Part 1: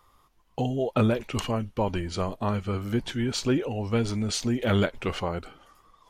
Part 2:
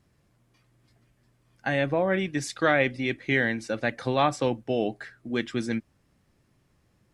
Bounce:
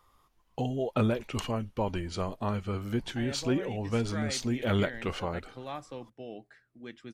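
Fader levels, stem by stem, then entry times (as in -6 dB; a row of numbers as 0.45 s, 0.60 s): -4.0 dB, -16.5 dB; 0.00 s, 1.50 s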